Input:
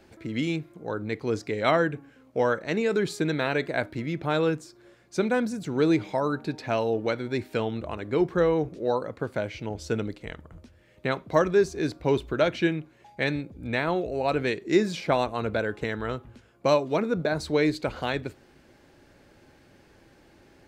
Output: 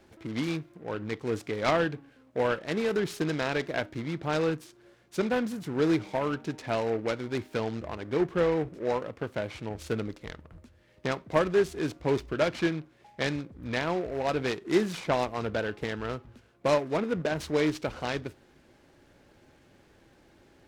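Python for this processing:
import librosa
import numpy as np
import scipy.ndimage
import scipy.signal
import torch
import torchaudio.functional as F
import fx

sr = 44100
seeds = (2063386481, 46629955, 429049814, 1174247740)

y = fx.noise_mod_delay(x, sr, seeds[0], noise_hz=1200.0, depth_ms=0.044)
y = y * 10.0 ** (-3.0 / 20.0)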